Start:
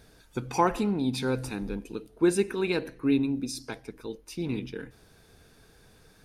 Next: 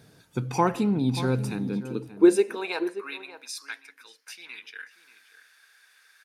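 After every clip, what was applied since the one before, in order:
high-pass filter sweep 130 Hz → 1,700 Hz, 0:01.56–0:03.27
slap from a distant wall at 100 metres, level −13 dB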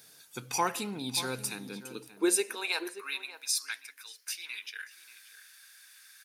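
spectral tilt +4.5 dB per octave
level −4.5 dB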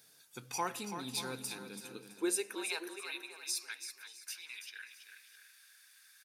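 repeating echo 331 ms, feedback 33%, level −9 dB
level −7 dB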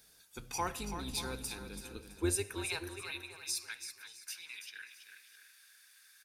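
sub-octave generator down 2 octaves, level +1 dB
on a send at −21 dB: convolution reverb RT60 0.65 s, pre-delay 46 ms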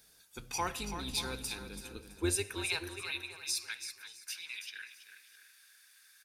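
dynamic equaliser 3,200 Hz, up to +5 dB, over −52 dBFS, Q 0.77

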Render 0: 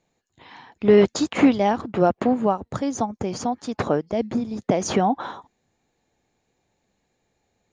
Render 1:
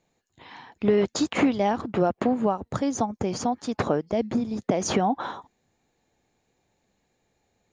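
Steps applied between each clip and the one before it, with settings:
downward compressor 3 to 1, threshold −19 dBFS, peak gain reduction 7.5 dB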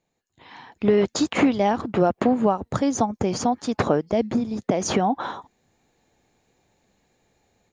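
automatic gain control gain up to 10.5 dB
level −5 dB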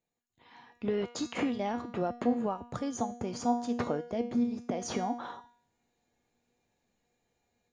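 tuned comb filter 240 Hz, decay 0.56 s, harmonics all, mix 80%

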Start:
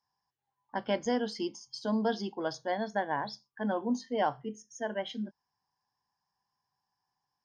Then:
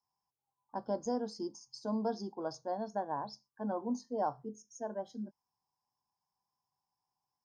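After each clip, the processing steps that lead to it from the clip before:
Chebyshev band-stop filter 1,100–5,500 Hz, order 2
level −4 dB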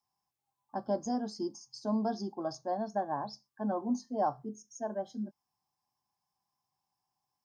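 notch comb filter 480 Hz
level +4 dB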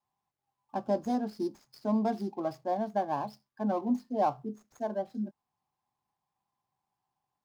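running median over 15 samples
level +3 dB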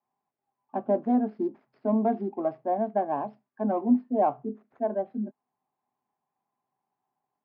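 loudspeaker in its box 150–2,400 Hz, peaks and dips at 250 Hz +8 dB, 410 Hz +7 dB, 660 Hz +6 dB

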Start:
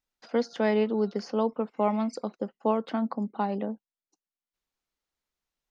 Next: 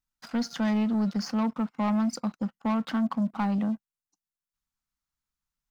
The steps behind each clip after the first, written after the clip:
drawn EQ curve 160 Hz 0 dB, 270 Hz −7 dB, 410 Hz −22 dB, 890 Hz −8 dB, 1,300 Hz −4 dB, 2,100 Hz −9 dB, 3,300 Hz −9 dB, 7,400 Hz −4 dB
leveller curve on the samples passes 2
in parallel at +2 dB: brickwall limiter −34.5 dBFS, peak gain reduction 12 dB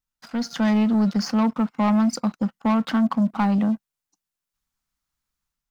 automatic gain control gain up to 6.5 dB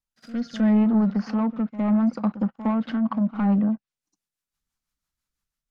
rotating-speaker cabinet horn 0.75 Hz, later 6 Hz, at 0:02.86
treble cut that deepens with the level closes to 1,700 Hz, closed at −20.5 dBFS
echo ahead of the sound 61 ms −14 dB

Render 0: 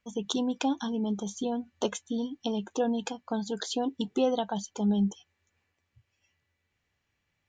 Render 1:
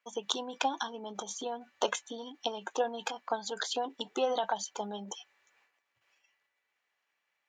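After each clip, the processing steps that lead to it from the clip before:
transient designer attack +6 dB, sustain +10 dB
high-pass filter 790 Hz 12 dB per octave
high-shelf EQ 2,400 Hz −9 dB
level +3 dB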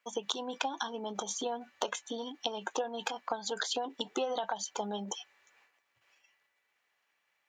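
downward compressor 10 to 1, threshold −33 dBFS, peak gain reduction 10.5 dB
hard clipping −17.5 dBFS, distortion −44 dB
level +3.5 dB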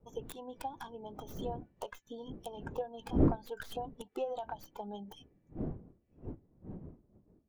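stylus tracing distortion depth 0.32 ms
wind on the microphone 320 Hz −38 dBFS
every bin expanded away from the loudest bin 1.5 to 1
level −1 dB

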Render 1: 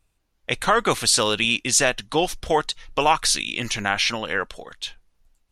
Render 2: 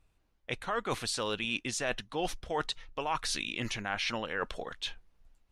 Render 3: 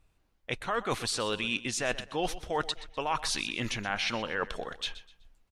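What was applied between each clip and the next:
high-shelf EQ 4,800 Hz −10.5 dB; reversed playback; downward compressor 5 to 1, threshold −31 dBFS, peak gain reduction 16 dB; reversed playback
repeating echo 125 ms, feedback 31%, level −15.5 dB; level +2 dB

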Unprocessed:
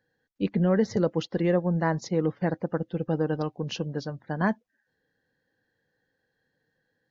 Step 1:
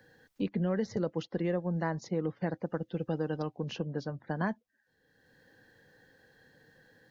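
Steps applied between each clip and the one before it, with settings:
multiband upward and downward compressor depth 70%
level −7 dB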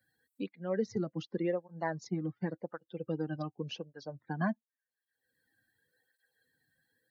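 spectral dynamics exaggerated over time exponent 1.5
through-zero flanger with one copy inverted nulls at 0.89 Hz, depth 2.4 ms
level +3 dB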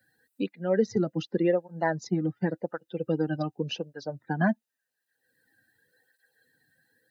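notch comb filter 1,100 Hz
level +8.5 dB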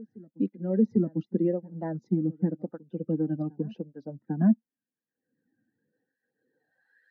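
band-pass filter sweep 230 Hz → 1,800 Hz, 0:06.35–0:07.01
backwards echo 798 ms −23 dB
level +6.5 dB

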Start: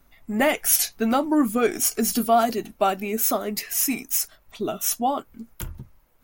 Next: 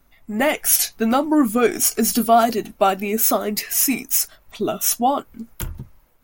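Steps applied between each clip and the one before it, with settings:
automatic gain control gain up to 5 dB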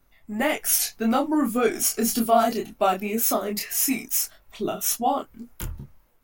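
chorus effect 1.8 Hz, depth 6.2 ms
level −1.5 dB

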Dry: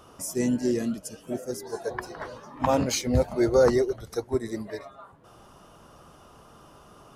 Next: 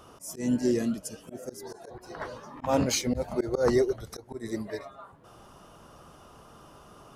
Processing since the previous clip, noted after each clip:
volume swells 160 ms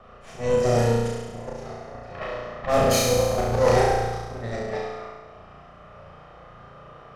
lower of the sound and its delayed copy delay 1.6 ms
low-pass that shuts in the quiet parts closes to 2,100 Hz, open at −24 dBFS
flutter between parallel walls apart 5.9 metres, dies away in 1.3 s
level +3 dB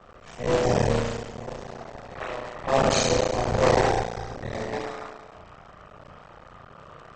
sub-harmonics by changed cycles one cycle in 3, muted
AAC 24 kbit/s 48,000 Hz

